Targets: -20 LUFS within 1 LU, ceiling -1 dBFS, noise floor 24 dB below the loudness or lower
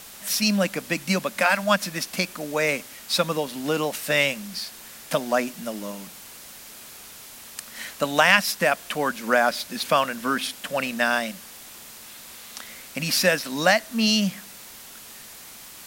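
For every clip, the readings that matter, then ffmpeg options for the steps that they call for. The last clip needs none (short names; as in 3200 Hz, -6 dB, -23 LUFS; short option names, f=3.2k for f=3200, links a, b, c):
noise floor -43 dBFS; noise floor target -48 dBFS; loudness -23.5 LUFS; peak -3.0 dBFS; loudness target -20.0 LUFS
-> -af "afftdn=nr=6:nf=-43"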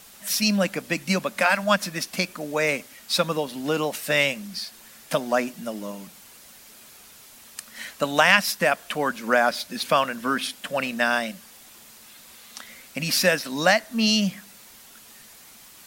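noise floor -49 dBFS; loudness -23.5 LUFS; peak -3.0 dBFS; loudness target -20.0 LUFS
-> -af "volume=3.5dB,alimiter=limit=-1dB:level=0:latency=1"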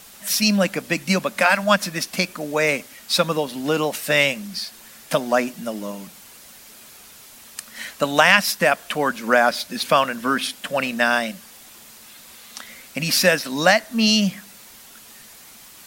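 loudness -20.0 LUFS; peak -1.0 dBFS; noise floor -45 dBFS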